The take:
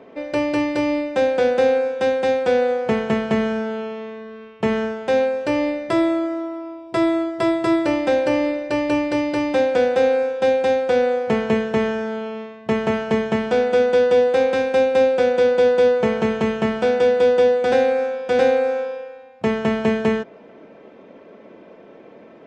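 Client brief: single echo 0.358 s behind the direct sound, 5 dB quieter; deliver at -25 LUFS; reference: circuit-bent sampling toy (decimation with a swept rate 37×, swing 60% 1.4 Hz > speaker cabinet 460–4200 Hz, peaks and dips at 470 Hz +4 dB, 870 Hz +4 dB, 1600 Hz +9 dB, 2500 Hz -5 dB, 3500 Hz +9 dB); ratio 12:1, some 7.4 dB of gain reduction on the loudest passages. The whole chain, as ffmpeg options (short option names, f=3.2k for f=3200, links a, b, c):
-af "acompressor=threshold=-19dB:ratio=12,aecho=1:1:358:0.562,acrusher=samples=37:mix=1:aa=0.000001:lfo=1:lforange=22.2:lforate=1.4,highpass=460,equalizer=f=470:t=q:w=4:g=4,equalizer=f=870:t=q:w=4:g=4,equalizer=f=1.6k:t=q:w=4:g=9,equalizer=f=2.5k:t=q:w=4:g=-5,equalizer=f=3.5k:t=q:w=4:g=9,lowpass=f=4.2k:w=0.5412,lowpass=f=4.2k:w=1.3066,volume=-3dB"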